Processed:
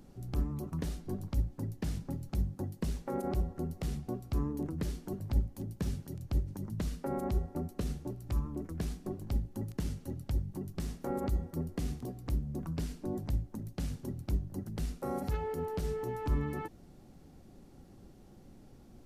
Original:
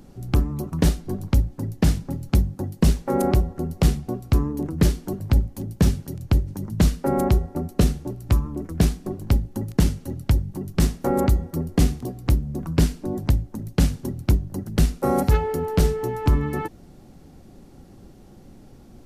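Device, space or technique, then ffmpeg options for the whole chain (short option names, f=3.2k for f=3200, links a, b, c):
de-esser from a sidechain: -filter_complex "[0:a]asplit=2[a][b];[b]highpass=f=4.8k:p=1,apad=whole_len=840136[c];[a][c]sidechaincompress=threshold=-42dB:ratio=5:attack=4.3:release=54,volume=-8.5dB"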